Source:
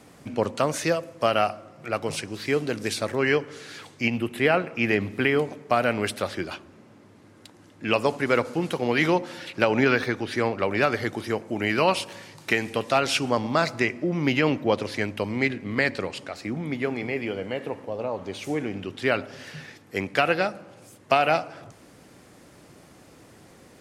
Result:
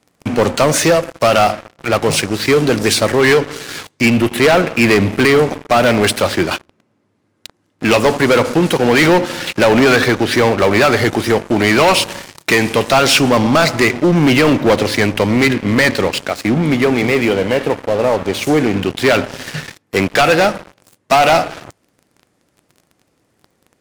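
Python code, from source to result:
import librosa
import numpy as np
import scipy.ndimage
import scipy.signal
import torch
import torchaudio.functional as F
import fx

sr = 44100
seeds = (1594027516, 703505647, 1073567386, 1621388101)

y = fx.leveller(x, sr, passes=5)
y = y * 10.0 ** (-1.5 / 20.0)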